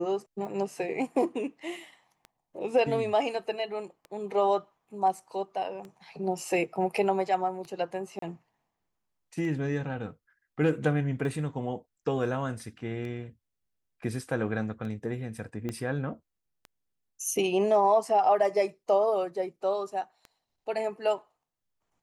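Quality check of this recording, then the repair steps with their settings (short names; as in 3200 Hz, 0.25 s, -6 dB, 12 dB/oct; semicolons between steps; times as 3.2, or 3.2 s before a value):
tick 33 1/3 rpm -29 dBFS
8.19–8.22 gap 33 ms
15.69 pop -21 dBFS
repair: de-click; interpolate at 8.19, 33 ms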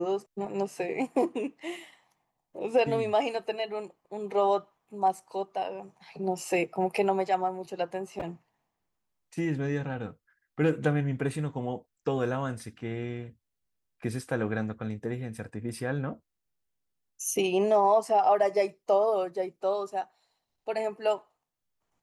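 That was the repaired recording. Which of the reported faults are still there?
15.69 pop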